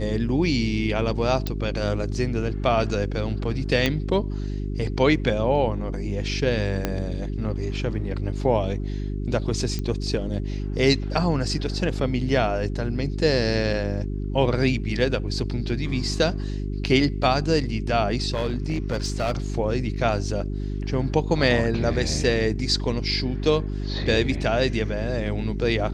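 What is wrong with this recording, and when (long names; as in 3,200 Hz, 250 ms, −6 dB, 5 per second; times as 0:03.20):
mains hum 50 Hz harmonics 8 −28 dBFS
0:01.47: click −13 dBFS
0:03.86: click −8 dBFS
0:06.85: click −9 dBFS
0:09.79: click −16 dBFS
0:18.34–0:19.38: clipping −19.5 dBFS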